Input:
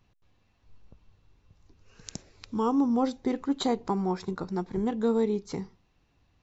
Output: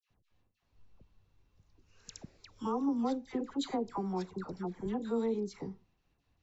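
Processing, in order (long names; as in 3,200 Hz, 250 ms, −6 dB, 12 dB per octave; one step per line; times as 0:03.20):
noise gate with hold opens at −58 dBFS
all-pass dispersion lows, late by 91 ms, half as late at 1,300 Hz
level −7 dB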